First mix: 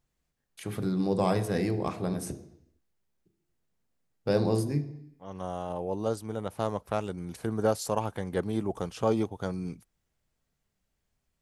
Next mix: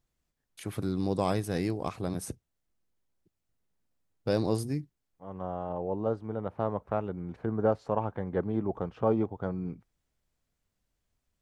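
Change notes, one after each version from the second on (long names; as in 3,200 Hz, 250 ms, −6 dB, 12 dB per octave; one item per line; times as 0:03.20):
second voice: add low-pass filter 1,500 Hz 12 dB per octave
reverb: off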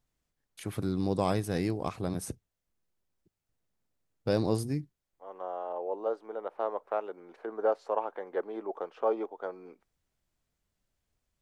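second voice: add high-pass filter 390 Hz 24 dB per octave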